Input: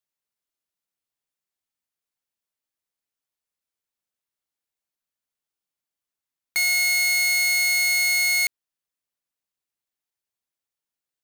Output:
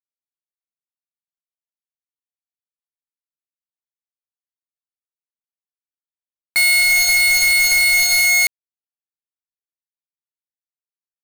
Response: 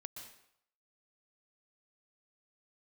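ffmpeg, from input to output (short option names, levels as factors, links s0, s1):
-af "flanger=delay=8.3:depth=1.7:regen=-66:speed=0.3:shape=sinusoidal,acrusher=bits=4:mix=0:aa=0.000001,aeval=exprs='0.133*sin(PI/2*7.08*val(0)/0.133)':c=same,volume=2.66"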